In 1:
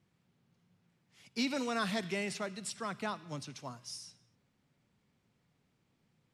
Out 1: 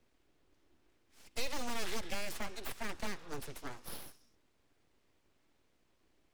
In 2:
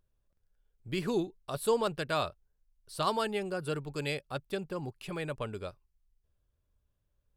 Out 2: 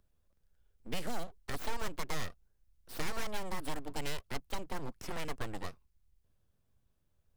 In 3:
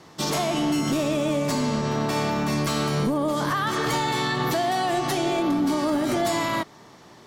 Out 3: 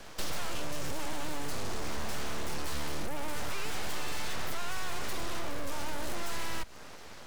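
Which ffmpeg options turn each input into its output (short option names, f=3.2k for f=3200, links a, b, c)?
-filter_complex "[0:a]aeval=exprs='(tanh(20*val(0)+0.4)-tanh(0.4))/20':c=same,asplit=2[a][b];[b]acrusher=bits=3:dc=4:mix=0:aa=0.000001,volume=-10dB[c];[a][c]amix=inputs=2:normalize=0,aeval=exprs='abs(val(0))':c=same,acrossover=split=110|5600[d][e][f];[d]acompressor=threshold=-33dB:ratio=4[g];[e]acompressor=threshold=-43dB:ratio=4[h];[f]acompressor=threshold=-50dB:ratio=4[i];[g][h][i]amix=inputs=3:normalize=0,volume=4.5dB"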